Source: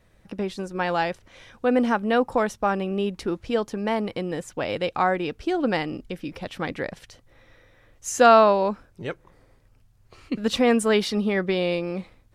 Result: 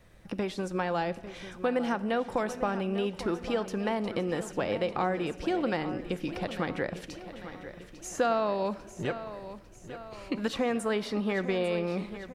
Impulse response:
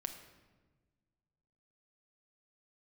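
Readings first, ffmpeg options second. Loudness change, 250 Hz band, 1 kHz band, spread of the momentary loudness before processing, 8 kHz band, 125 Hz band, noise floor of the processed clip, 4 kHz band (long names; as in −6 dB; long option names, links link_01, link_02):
−7.5 dB, −6.0 dB, −9.0 dB, 15 LU, −9.0 dB, −3.5 dB, −50 dBFS, −7.5 dB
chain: -filter_complex "[0:a]acrossover=split=620|1800[link_01][link_02][link_03];[link_01]acompressor=threshold=-33dB:ratio=4[link_04];[link_02]acompressor=threshold=-37dB:ratio=4[link_05];[link_03]acompressor=threshold=-45dB:ratio=4[link_06];[link_04][link_05][link_06]amix=inputs=3:normalize=0,aecho=1:1:848|1696|2544|3392|4240|5088:0.237|0.128|0.0691|0.0373|0.0202|0.0109,asplit=2[link_07][link_08];[1:a]atrim=start_sample=2205[link_09];[link_08][link_09]afir=irnorm=-1:irlink=0,volume=-3.5dB[link_10];[link_07][link_10]amix=inputs=2:normalize=0,volume=-1.5dB"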